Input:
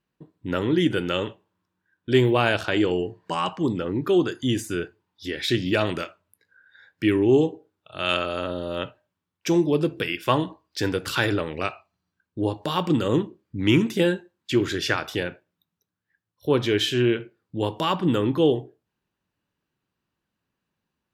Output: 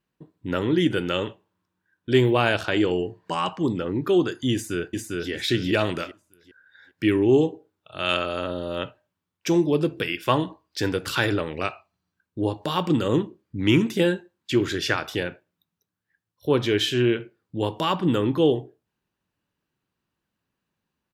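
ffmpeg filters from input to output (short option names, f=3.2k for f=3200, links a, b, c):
-filter_complex "[0:a]asplit=2[a][b];[b]afade=t=in:st=4.53:d=0.01,afade=t=out:st=5.31:d=0.01,aecho=0:1:400|800|1200|1600:0.794328|0.238298|0.0714895|0.0214469[c];[a][c]amix=inputs=2:normalize=0"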